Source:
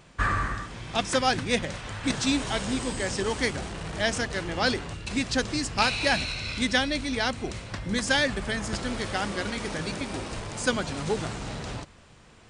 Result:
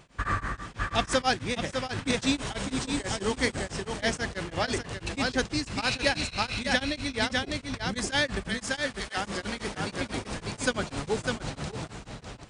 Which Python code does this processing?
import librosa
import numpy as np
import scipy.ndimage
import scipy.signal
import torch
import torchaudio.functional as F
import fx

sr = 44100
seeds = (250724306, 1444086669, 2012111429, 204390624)

p1 = fx.highpass(x, sr, hz=1300.0, slope=6, at=(8.48, 9.17))
p2 = p1 + fx.echo_single(p1, sr, ms=602, db=-4.5, dry=0)
y = p2 * np.abs(np.cos(np.pi * 6.1 * np.arange(len(p2)) / sr))